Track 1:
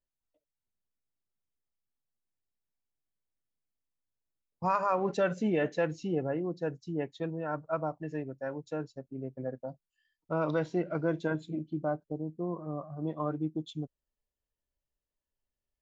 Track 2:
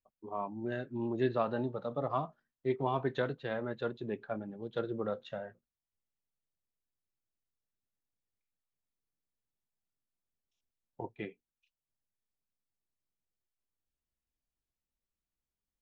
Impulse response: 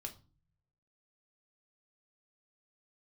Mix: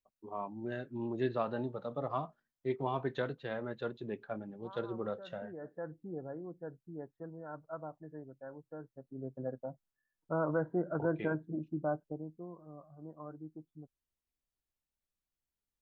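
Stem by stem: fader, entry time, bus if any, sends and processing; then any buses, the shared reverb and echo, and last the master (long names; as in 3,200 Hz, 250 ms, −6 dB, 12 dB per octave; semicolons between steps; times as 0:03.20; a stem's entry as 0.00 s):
0:05.27 −22.5 dB → 0:05.90 −10.5 dB → 0:08.82 −10.5 dB → 0:09.28 −2 dB → 0:12.04 −2 dB → 0:12.55 −13.5 dB, 0.00 s, no send, elliptic low-pass filter 1,600 Hz, stop band 40 dB
−2.5 dB, 0.00 s, no send, no processing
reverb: not used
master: no processing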